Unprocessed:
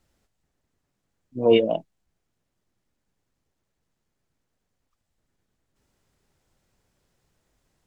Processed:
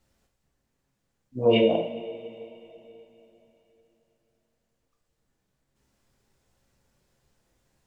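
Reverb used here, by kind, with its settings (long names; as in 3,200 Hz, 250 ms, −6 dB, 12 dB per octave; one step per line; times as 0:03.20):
coupled-rooms reverb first 0.55 s, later 3.5 s, from −17 dB, DRR 0.5 dB
level −2 dB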